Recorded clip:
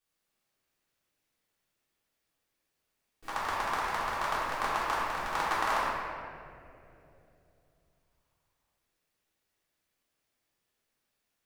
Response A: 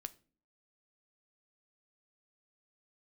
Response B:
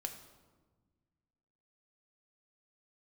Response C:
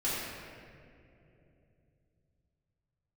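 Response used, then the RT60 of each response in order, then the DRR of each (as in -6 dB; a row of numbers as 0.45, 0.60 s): C; not exponential, 1.4 s, 2.8 s; 11.0, 4.0, -11.0 dB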